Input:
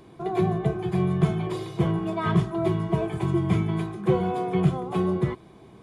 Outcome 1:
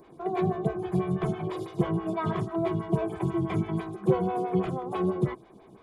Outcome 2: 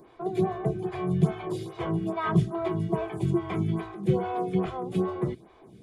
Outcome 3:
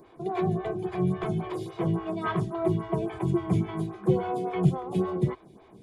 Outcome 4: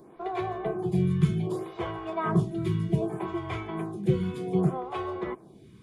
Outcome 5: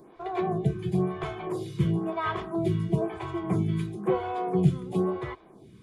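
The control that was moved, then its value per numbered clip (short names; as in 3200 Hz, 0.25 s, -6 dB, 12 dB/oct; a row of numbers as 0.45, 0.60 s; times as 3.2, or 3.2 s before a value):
photocell phaser, rate: 6.1, 2.4, 3.6, 0.65, 1 Hz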